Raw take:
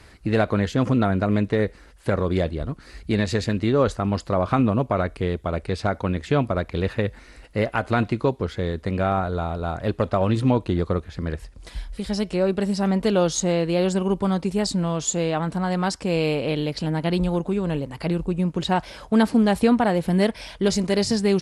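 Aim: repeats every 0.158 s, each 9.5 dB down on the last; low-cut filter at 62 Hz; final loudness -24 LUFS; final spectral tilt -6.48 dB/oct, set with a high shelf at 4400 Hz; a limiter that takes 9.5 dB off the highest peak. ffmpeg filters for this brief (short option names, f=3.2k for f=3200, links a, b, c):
-af "highpass=62,highshelf=f=4.4k:g=-7,alimiter=limit=-16dB:level=0:latency=1,aecho=1:1:158|316|474|632:0.335|0.111|0.0365|0.012,volume=2.5dB"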